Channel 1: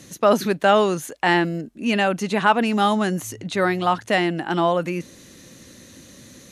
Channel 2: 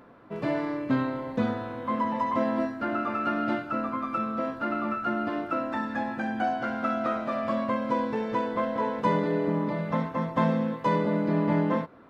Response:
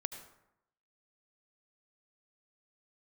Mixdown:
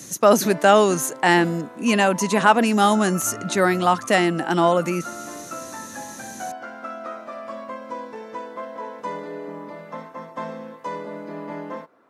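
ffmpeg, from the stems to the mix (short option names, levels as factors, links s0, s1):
-filter_complex "[0:a]volume=1.26[s0];[1:a]bass=f=250:g=-13,treble=f=4000:g=0,volume=0.631[s1];[s0][s1]amix=inputs=2:normalize=0,highpass=110,highshelf=f=4900:t=q:w=1.5:g=6.5"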